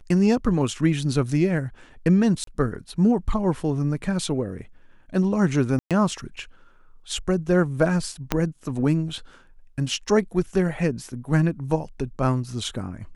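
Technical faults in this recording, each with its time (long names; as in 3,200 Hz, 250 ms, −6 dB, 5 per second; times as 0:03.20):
0:02.44–0:02.47: drop-out 33 ms
0:05.79–0:05.91: drop-out 117 ms
0:08.32: click −6 dBFS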